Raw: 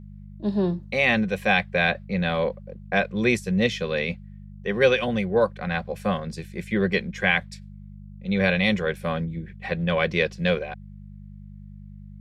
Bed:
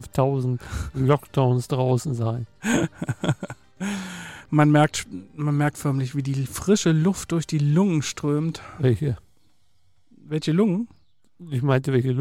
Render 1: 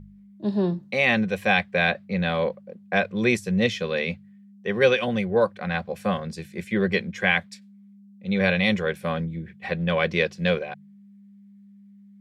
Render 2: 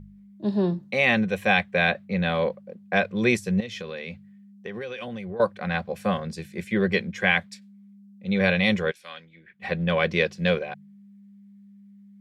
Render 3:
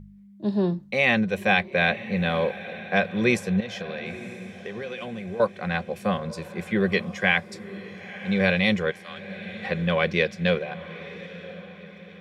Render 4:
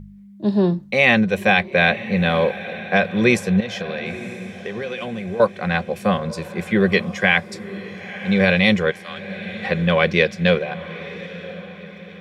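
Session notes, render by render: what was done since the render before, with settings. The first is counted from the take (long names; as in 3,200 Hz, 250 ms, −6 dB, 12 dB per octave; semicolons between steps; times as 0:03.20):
hum removal 50 Hz, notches 3
0:00.90–0:02.36: parametric band 4,800 Hz −6 dB 0.22 octaves; 0:03.60–0:05.40: downward compressor 16 to 1, threshold −30 dBFS; 0:08.90–0:09.59: resonant band-pass 6,300 Hz → 1,400 Hz, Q 1.1
feedback delay with all-pass diffusion 944 ms, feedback 44%, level −15 dB
level +6 dB; brickwall limiter −2 dBFS, peak gain reduction 2.5 dB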